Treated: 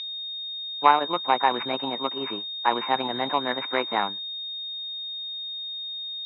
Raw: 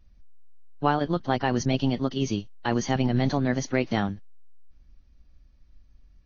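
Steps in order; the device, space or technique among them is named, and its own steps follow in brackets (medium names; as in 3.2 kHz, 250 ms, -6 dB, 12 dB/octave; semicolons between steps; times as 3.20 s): toy sound module (decimation joined by straight lines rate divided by 4×; class-D stage that switches slowly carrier 3.7 kHz; cabinet simulation 610–4600 Hz, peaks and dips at 650 Hz -4 dB, 980 Hz +9 dB, 2.3 kHz +8 dB, 3.8 kHz -8 dB); trim +6 dB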